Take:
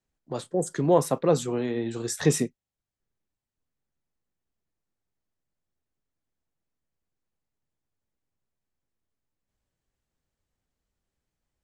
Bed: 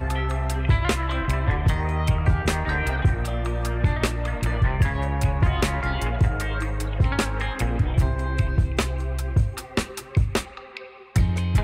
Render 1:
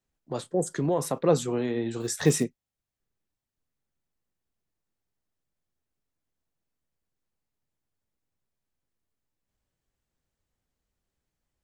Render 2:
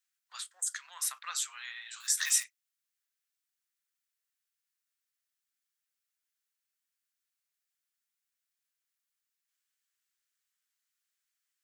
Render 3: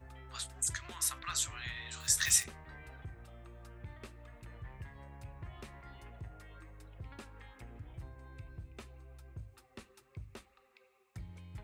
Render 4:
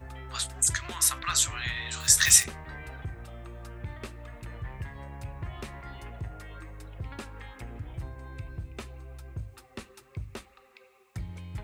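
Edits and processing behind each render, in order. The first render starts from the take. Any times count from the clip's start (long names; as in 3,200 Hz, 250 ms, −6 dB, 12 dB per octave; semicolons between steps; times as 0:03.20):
0:00.64–0:01.23: downward compressor 3 to 1, threshold −22 dBFS; 0:02.00–0:02.44: floating-point word with a short mantissa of 4 bits
Butterworth high-pass 1,300 Hz 36 dB per octave; high-shelf EQ 5,000 Hz +6 dB
mix in bed −27 dB
level +9.5 dB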